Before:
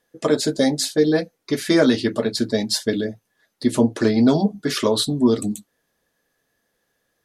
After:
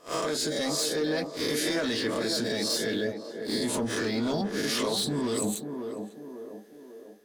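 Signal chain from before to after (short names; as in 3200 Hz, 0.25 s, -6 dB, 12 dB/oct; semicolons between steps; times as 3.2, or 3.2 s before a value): spectral swells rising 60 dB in 0.37 s; tilt shelf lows -5 dB, about 760 Hz; AGC gain up to 4.5 dB; sample leveller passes 2; limiter -13.5 dBFS, peak gain reduction 11.5 dB; compressor 6:1, threshold -30 dBFS, peak gain reduction 12.5 dB; narrowing echo 0.546 s, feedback 57%, band-pass 480 Hz, level -4.5 dB; gain +2 dB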